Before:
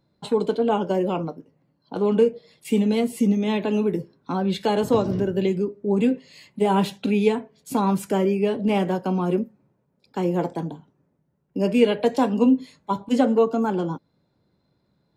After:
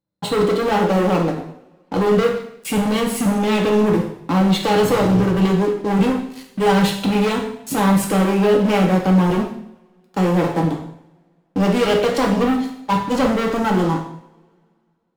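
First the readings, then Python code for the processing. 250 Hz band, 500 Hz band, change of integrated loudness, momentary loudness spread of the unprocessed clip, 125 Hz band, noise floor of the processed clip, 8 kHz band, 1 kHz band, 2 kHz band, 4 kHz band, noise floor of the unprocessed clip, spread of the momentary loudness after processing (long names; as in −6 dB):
+4.5 dB, +3.5 dB, +4.5 dB, 10 LU, +8.0 dB, −62 dBFS, +11.0 dB, +6.5 dB, +10.0 dB, +8.5 dB, −70 dBFS, 9 LU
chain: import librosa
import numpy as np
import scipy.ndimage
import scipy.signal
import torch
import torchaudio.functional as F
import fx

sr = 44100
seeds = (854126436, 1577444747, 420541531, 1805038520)

y = fx.leveller(x, sr, passes=5)
y = fx.rev_double_slope(y, sr, seeds[0], early_s=0.66, late_s=2.3, knee_db=-27, drr_db=0.5)
y = y * librosa.db_to_amplitude(-9.0)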